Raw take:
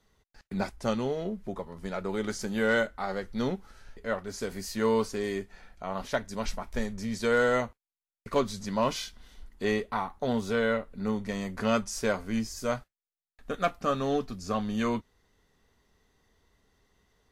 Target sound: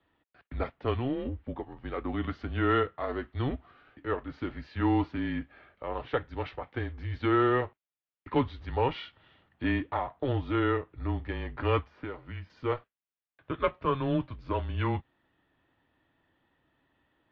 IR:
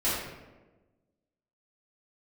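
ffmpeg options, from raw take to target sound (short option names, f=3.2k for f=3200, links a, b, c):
-filter_complex "[0:a]asettb=1/sr,asplit=3[a][b][c];[a]atrim=end=11.794[d];[b]atrim=start=11.79:end=12.5,asetpts=PTS-STARTPTS,afade=t=in:d=0.004:c=qsin,afade=t=out:st=0.706:d=0.004:c=qsin,acrossover=split=1000|2300[e][f][g];[e]acompressor=threshold=-38dB:ratio=4[h];[f]acompressor=threshold=-48dB:ratio=4[i];[g]acompressor=threshold=-52dB:ratio=4[j];[h][i][j]amix=inputs=3:normalize=0[k];[c]atrim=start=12.496[l];[d][k]acrossfade=d=0.004:c1=hsin:c2=qsin[m];[m][l]acrossfade=d=0.004:c1=qsin:c2=hsin,highpass=f=190:t=q:w=0.5412,highpass=f=190:t=q:w=1.307,lowpass=f=3.4k:t=q:w=0.5176,lowpass=f=3.4k:t=q:w=0.7071,lowpass=f=3.4k:t=q:w=1.932,afreqshift=-130"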